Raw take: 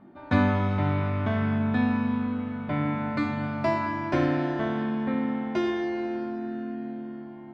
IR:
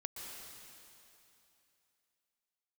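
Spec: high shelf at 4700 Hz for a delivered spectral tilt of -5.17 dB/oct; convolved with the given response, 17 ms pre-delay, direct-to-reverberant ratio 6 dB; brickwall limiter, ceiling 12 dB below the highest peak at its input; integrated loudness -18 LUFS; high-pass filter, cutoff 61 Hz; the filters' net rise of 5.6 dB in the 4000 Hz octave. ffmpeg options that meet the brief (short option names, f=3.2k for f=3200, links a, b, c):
-filter_complex "[0:a]highpass=61,equalizer=f=4k:t=o:g=4.5,highshelf=f=4.7k:g=6,alimiter=limit=-21.5dB:level=0:latency=1,asplit=2[a][b];[1:a]atrim=start_sample=2205,adelay=17[c];[b][c]afir=irnorm=-1:irlink=0,volume=-4.5dB[d];[a][d]amix=inputs=2:normalize=0,volume=12dB"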